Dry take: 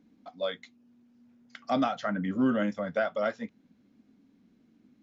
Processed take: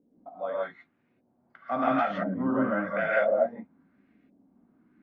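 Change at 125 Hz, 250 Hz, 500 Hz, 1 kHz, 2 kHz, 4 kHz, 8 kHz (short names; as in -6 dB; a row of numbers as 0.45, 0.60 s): -1.0 dB, -0.5 dB, +4.5 dB, +4.5 dB, +5.5 dB, -8.0 dB, n/a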